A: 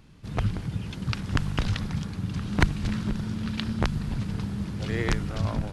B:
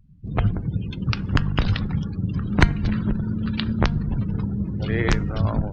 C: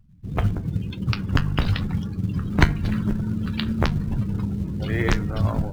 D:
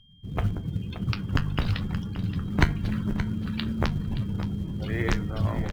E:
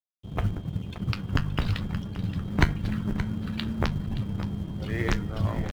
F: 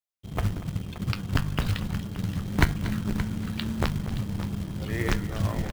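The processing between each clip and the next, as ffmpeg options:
-af "bandreject=f=233.4:t=h:w=4,bandreject=f=466.8:t=h:w=4,bandreject=f=700.2:t=h:w=4,bandreject=f=933.6:t=h:w=4,bandreject=f=1.167k:t=h:w=4,bandreject=f=1.4004k:t=h:w=4,bandreject=f=1.6338k:t=h:w=4,bandreject=f=1.8672k:t=h:w=4,bandreject=f=2.1006k:t=h:w=4,bandreject=f=2.334k:t=h:w=4,bandreject=f=2.5674k:t=h:w=4,bandreject=f=2.8008k:t=h:w=4,bandreject=f=3.0342k:t=h:w=4,bandreject=f=3.2676k:t=h:w=4,bandreject=f=3.501k:t=h:w=4,bandreject=f=3.7344k:t=h:w=4,bandreject=f=3.9678k:t=h:w=4,bandreject=f=4.2012k:t=h:w=4,bandreject=f=4.4346k:t=h:w=4,bandreject=f=4.668k:t=h:w=4,bandreject=f=4.9014k:t=h:w=4,bandreject=f=5.1348k:t=h:w=4,bandreject=f=5.3682k:t=h:w=4,bandreject=f=5.6016k:t=h:w=4,bandreject=f=5.835k:t=h:w=4,bandreject=f=6.0684k:t=h:w=4,bandreject=f=6.3018k:t=h:w=4,bandreject=f=6.5352k:t=h:w=4,bandreject=f=6.7686k:t=h:w=4,bandreject=f=7.002k:t=h:w=4,afftdn=nr=32:nf=-41,volume=5.5dB"
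-filter_complex "[0:a]asplit=2[a][b];[b]acrusher=bits=5:mode=log:mix=0:aa=0.000001,volume=-6dB[c];[a][c]amix=inputs=2:normalize=0,flanger=delay=8.9:depth=4.7:regen=-59:speed=0.94:shape=triangular"
-filter_complex "[0:a]aeval=exprs='val(0)+0.00224*sin(2*PI*3200*n/s)':c=same,asplit=2[a][b];[b]aecho=0:1:574:0.251[c];[a][c]amix=inputs=2:normalize=0,volume=-4.5dB"
-af "aeval=exprs='sgn(val(0))*max(abs(val(0))-0.00631,0)':c=same"
-af "aecho=1:1:237:0.178,acrusher=bits=4:mode=log:mix=0:aa=0.000001"

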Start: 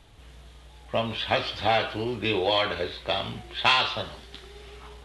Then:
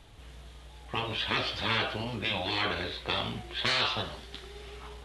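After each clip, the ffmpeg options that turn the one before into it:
-af "afftfilt=real='re*lt(hypot(re,im),0.178)':imag='im*lt(hypot(re,im),0.178)':win_size=1024:overlap=0.75"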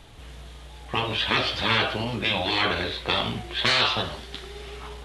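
-af "bandreject=f=50:t=h:w=6,bandreject=f=100:t=h:w=6,volume=6.5dB"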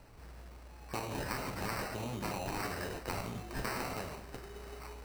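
-af "acrusher=samples=13:mix=1:aa=0.000001,bandreject=f=73.91:t=h:w=4,bandreject=f=147.82:t=h:w=4,bandreject=f=221.73:t=h:w=4,bandreject=f=295.64:t=h:w=4,bandreject=f=369.55:t=h:w=4,bandreject=f=443.46:t=h:w=4,bandreject=f=517.37:t=h:w=4,bandreject=f=591.28:t=h:w=4,bandreject=f=665.19:t=h:w=4,bandreject=f=739.1:t=h:w=4,bandreject=f=813.01:t=h:w=4,bandreject=f=886.92:t=h:w=4,bandreject=f=960.83:t=h:w=4,bandreject=f=1.03474k:t=h:w=4,bandreject=f=1.10865k:t=h:w=4,bandreject=f=1.18256k:t=h:w=4,bandreject=f=1.25647k:t=h:w=4,bandreject=f=1.33038k:t=h:w=4,bandreject=f=1.40429k:t=h:w=4,bandreject=f=1.4782k:t=h:w=4,bandreject=f=1.55211k:t=h:w=4,bandreject=f=1.62602k:t=h:w=4,bandreject=f=1.69993k:t=h:w=4,bandreject=f=1.77384k:t=h:w=4,bandreject=f=1.84775k:t=h:w=4,bandreject=f=1.92166k:t=h:w=4,bandreject=f=1.99557k:t=h:w=4,bandreject=f=2.06948k:t=h:w=4,bandreject=f=2.14339k:t=h:w=4,bandreject=f=2.2173k:t=h:w=4,bandreject=f=2.29121k:t=h:w=4,bandreject=f=2.36512k:t=h:w=4,bandreject=f=2.43903k:t=h:w=4,bandreject=f=2.51294k:t=h:w=4,bandreject=f=2.58685k:t=h:w=4,acompressor=threshold=-26dB:ratio=6,volume=-8dB"

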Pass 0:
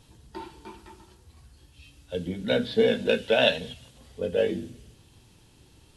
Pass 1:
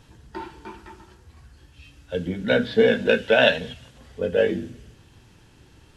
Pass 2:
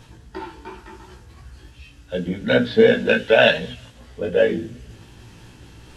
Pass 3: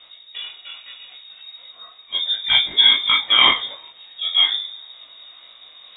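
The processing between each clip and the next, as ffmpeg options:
-af "equalizer=f=1.6k:t=o:w=0.67:g=6,equalizer=f=4k:t=o:w=0.67:g=-4,equalizer=f=10k:t=o:w=0.67:g=-9,volume=4dB"
-af "areverse,acompressor=mode=upward:threshold=-39dB:ratio=2.5,areverse,flanger=delay=16:depth=2.3:speed=2.7,volume=5.5dB"
-af "dynaudnorm=f=230:g=11:m=11.5dB,flanger=delay=19:depth=7:speed=0.77,lowpass=f=3.2k:t=q:w=0.5098,lowpass=f=3.2k:t=q:w=0.6013,lowpass=f=3.2k:t=q:w=0.9,lowpass=f=3.2k:t=q:w=2.563,afreqshift=-3800,volume=3dB"

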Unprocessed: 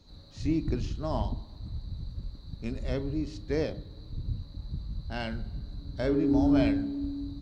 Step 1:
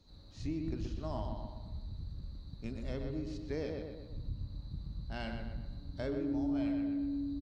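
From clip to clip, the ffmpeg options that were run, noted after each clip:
-filter_complex "[0:a]asplit=2[a][b];[b]adelay=124,lowpass=f=3.1k:p=1,volume=-5dB,asplit=2[c][d];[d]adelay=124,lowpass=f=3.1k:p=1,volume=0.49,asplit=2[e][f];[f]adelay=124,lowpass=f=3.1k:p=1,volume=0.49,asplit=2[g][h];[h]adelay=124,lowpass=f=3.1k:p=1,volume=0.49,asplit=2[i][j];[j]adelay=124,lowpass=f=3.1k:p=1,volume=0.49,asplit=2[k][l];[l]adelay=124,lowpass=f=3.1k:p=1,volume=0.49[m];[c][e][g][i][k][m]amix=inputs=6:normalize=0[n];[a][n]amix=inputs=2:normalize=0,acompressor=threshold=-27dB:ratio=3,volume=-6.5dB"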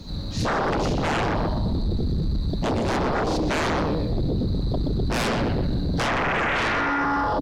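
-af "equalizer=f=180:w=1.3:g=7,aeval=exprs='0.0794*sin(PI/2*7.94*val(0)/0.0794)':c=same,volume=2dB"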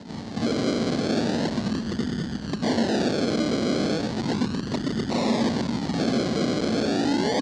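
-af "acrusher=samples=38:mix=1:aa=0.000001:lfo=1:lforange=22.8:lforate=0.35,highpass=180,equalizer=f=230:t=q:w=4:g=8,equalizer=f=1.3k:t=q:w=4:g=-7,equalizer=f=2.5k:t=q:w=4:g=-6,equalizer=f=4.4k:t=q:w=4:g=7,lowpass=f=6.8k:w=0.5412,lowpass=f=6.8k:w=1.3066"

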